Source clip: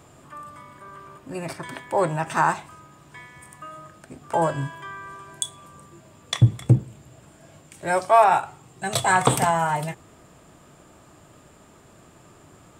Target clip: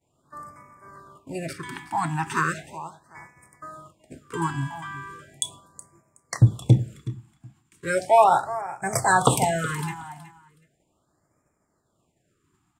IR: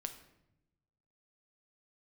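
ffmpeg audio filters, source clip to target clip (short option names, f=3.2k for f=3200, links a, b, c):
-af "agate=range=-33dB:threshold=-38dB:ratio=3:detection=peak,aecho=1:1:371|742:0.168|0.0336,afftfilt=real='re*(1-between(b*sr/1024,470*pow(3600/470,0.5+0.5*sin(2*PI*0.37*pts/sr))/1.41,470*pow(3600/470,0.5+0.5*sin(2*PI*0.37*pts/sr))*1.41))':imag='im*(1-between(b*sr/1024,470*pow(3600/470,0.5+0.5*sin(2*PI*0.37*pts/sr))/1.41,470*pow(3600/470,0.5+0.5*sin(2*PI*0.37*pts/sr))*1.41))':win_size=1024:overlap=0.75"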